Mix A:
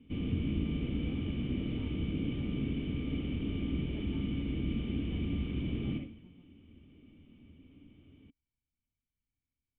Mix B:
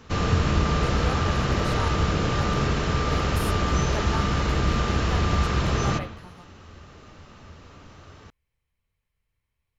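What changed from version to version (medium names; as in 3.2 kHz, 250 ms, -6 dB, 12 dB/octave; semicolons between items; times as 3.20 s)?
master: remove cascade formant filter i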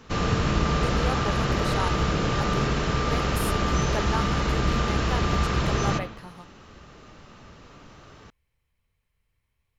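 speech +4.0 dB; background: add peaking EQ 85 Hz -13.5 dB 0.21 oct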